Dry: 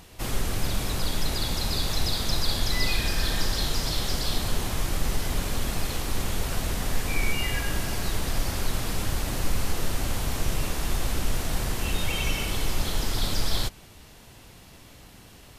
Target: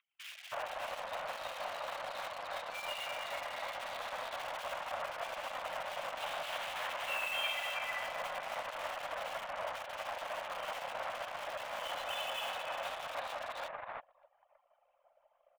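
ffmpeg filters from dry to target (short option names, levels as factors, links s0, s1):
-filter_complex "[0:a]alimiter=limit=0.075:level=0:latency=1:release=39,asplit=2[s0][s1];[s1]aecho=0:1:595:0.211[s2];[s0][s2]amix=inputs=2:normalize=0,acompressor=mode=upward:threshold=0.00708:ratio=2.5,highpass=f=220:t=q:w=0.5412,highpass=f=220:t=q:w=1.307,lowpass=f=2800:t=q:w=0.5176,lowpass=f=2800:t=q:w=0.7071,lowpass=f=2800:t=q:w=1.932,afreqshift=350,asettb=1/sr,asplit=3[s3][s4][s5];[s3]atrim=end=6.174[s6];[s4]atrim=start=6.17:end=7.75,asetpts=PTS-STARTPTS,afade=t=in:d=0.004:c=qsin,afade=t=out:st=1.576:d=0.004:c=qsin,aemphasis=mode=production:type=riaa[s7];[s5]atrim=start=7.746[s8];[s6][s7]acrossfade=d=0.004:c1=hsin:c2=qsin[s9];[s9][s8]acrossfade=d=0.004:c1=qsin:c2=hsin,asplit=2[s10][s11];[s11]acrusher=bits=5:mix=0:aa=0.000001,volume=0.376[s12];[s10][s12]amix=inputs=2:normalize=0,anlmdn=0.0631,flanger=delay=0.8:depth=9.9:regen=-77:speed=0.22:shape=triangular,acrossover=split=2200[s13][s14];[s13]adelay=320[s15];[s15][s14]amix=inputs=2:normalize=0,volume=1.26"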